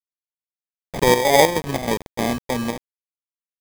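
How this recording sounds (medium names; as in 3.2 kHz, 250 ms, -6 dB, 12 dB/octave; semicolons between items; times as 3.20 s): aliases and images of a low sample rate 1.4 kHz, jitter 0%; chopped level 3.2 Hz, depth 65%, duty 65%; a quantiser's noise floor 6-bit, dither none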